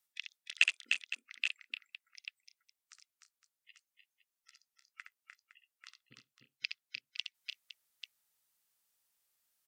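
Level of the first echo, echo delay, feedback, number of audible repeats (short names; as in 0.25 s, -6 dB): -6.5 dB, 66 ms, no steady repeat, 5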